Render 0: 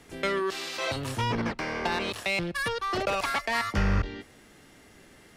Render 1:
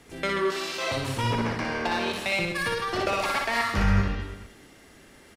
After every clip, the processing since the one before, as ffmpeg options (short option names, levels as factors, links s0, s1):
-af "aecho=1:1:60|132|218.4|322.1|446.5:0.631|0.398|0.251|0.158|0.1"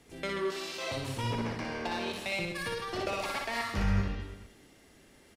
-af "equalizer=f=1400:w=1.2:g=-4,volume=0.501"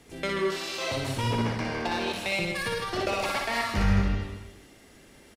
-af "aecho=1:1:157:0.335,volume=1.78"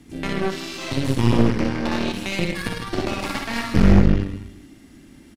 -af "lowshelf=f=370:t=q:w=3:g=7,aeval=exprs='0.562*(cos(1*acos(clip(val(0)/0.562,-1,1)))-cos(1*PI/2))+0.141*(cos(6*acos(clip(val(0)/0.562,-1,1)))-cos(6*PI/2))':c=same"